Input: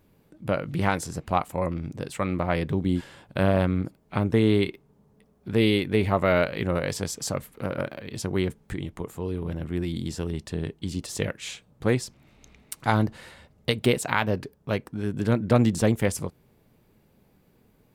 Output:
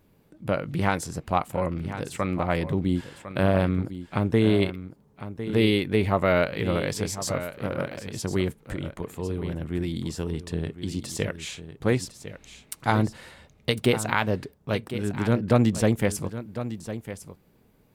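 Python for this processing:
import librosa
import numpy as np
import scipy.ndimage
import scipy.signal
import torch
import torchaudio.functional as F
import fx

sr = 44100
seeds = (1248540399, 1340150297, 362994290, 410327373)

y = x + 10.0 ** (-12.0 / 20.0) * np.pad(x, (int(1054 * sr / 1000.0), 0))[:len(x)]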